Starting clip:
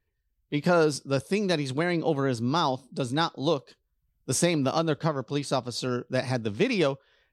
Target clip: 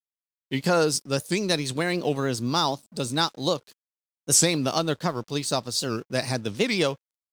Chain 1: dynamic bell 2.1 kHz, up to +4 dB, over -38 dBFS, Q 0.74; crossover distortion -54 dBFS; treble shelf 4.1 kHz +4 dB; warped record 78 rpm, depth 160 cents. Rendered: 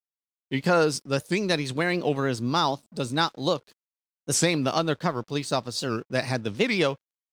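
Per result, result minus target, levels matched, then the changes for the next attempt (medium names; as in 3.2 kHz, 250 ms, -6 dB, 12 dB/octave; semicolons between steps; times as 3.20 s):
8 kHz band -5.5 dB; 2 kHz band +2.5 dB
change: treble shelf 4.1 kHz +13 dB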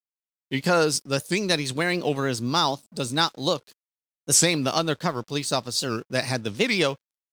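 2 kHz band +2.5 dB
remove: dynamic bell 2.1 kHz, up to +4 dB, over -38 dBFS, Q 0.74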